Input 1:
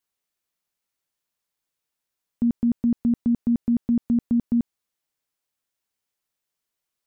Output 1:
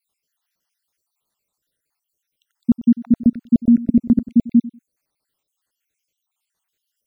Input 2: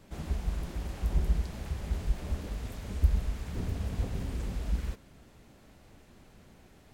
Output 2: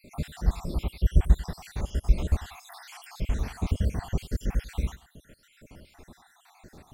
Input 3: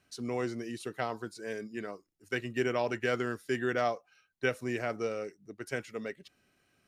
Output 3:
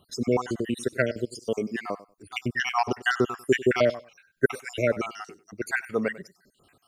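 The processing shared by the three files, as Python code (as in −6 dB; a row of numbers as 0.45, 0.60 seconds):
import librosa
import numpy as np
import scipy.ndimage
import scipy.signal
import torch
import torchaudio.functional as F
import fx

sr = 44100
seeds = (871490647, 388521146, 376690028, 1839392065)

y = fx.spec_dropout(x, sr, seeds[0], share_pct=66)
y = fx.echo_feedback(y, sr, ms=96, feedback_pct=17, wet_db=-18)
y = y * 10.0 ** (-6 / 20.0) / np.max(np.abs(y))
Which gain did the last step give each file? +9.5, +9.0, +12.5 decibels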